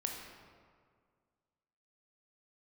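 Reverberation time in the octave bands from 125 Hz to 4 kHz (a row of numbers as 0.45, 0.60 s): 2.1, 2.1, 2.0, 1.9, 1.5, 1.1 s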